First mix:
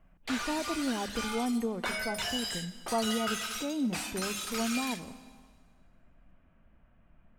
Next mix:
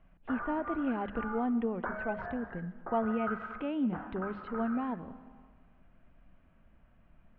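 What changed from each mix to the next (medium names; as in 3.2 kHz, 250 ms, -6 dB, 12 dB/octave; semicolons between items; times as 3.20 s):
background: add steep low-pass 1.6 kHz 48 dB/octave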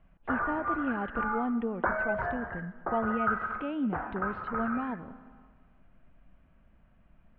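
background +8.5 dB; master: remove hum notches 50/100/150/200 Hz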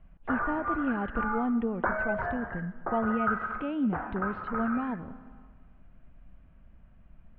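speech: add bass shelf 170 Hz +8 dB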